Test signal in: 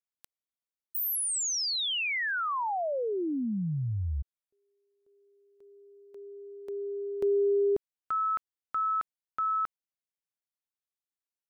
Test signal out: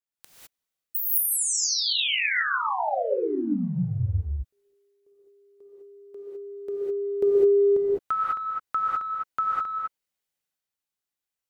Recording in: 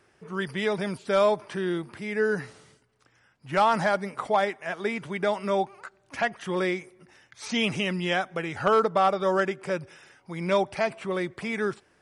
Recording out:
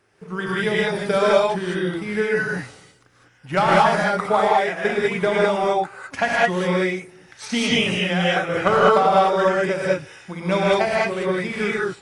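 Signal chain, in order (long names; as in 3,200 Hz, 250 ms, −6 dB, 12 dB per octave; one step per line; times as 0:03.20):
transient designer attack +8 dB, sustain +4 dB
reverb whose tail is shaped and stops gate 230 ms rising, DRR −6 dB
level −2 dB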